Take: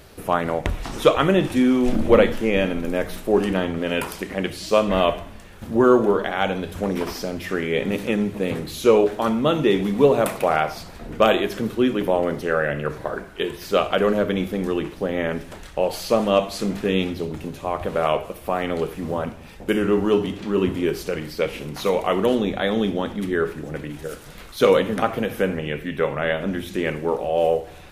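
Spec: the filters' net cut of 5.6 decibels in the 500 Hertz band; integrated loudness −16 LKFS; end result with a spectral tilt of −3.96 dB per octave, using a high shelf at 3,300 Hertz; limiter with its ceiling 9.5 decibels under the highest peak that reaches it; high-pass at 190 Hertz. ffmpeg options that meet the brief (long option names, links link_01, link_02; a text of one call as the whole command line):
ffmpeg -i in.wav -af "highpass=190,equalizer=frequency=500:width_type=o:gain=-7,highshelf=frequency=3300:gain=7.5,volume=10.5dB,alimiter=limit=-2dB:level=0:latency=1" out.wav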